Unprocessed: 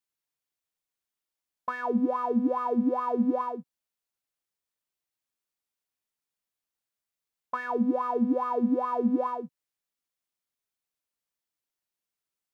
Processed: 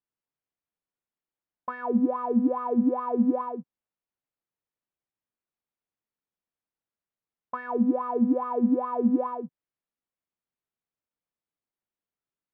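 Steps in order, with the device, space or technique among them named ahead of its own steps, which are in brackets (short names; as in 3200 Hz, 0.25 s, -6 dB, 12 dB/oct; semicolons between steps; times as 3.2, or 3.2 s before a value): phone in a pocket (LPF 3300 Hz 12 dB/oct; bell 200 Hz +3 dB 2.1 oct; high shelf 2300 Hz -10.5 dB)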